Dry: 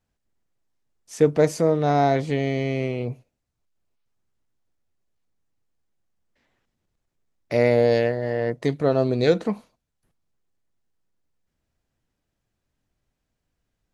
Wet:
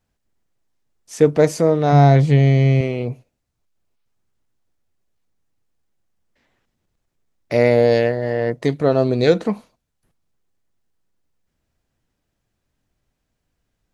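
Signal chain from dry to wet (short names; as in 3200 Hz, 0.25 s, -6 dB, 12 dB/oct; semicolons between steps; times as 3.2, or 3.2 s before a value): 1.92–2.81 bell 140 Hz +12.5 dB 0.39 oct; gain +4 dB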